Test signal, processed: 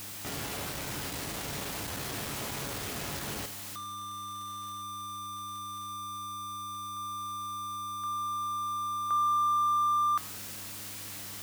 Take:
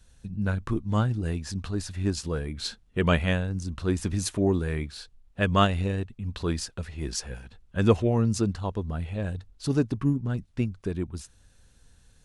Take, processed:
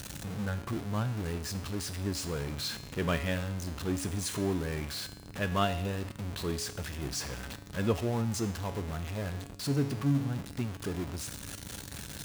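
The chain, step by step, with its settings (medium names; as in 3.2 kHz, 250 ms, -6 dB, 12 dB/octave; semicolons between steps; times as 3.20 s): jump at every zero crossing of -24.5 dBFS; high-pass 70 Hz; mains buzz 100 Hz, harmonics 3, -43 dBFS -4 dB/octave; feedback comb 140 Hz, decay 0.79 s, harmonics all, mix 70%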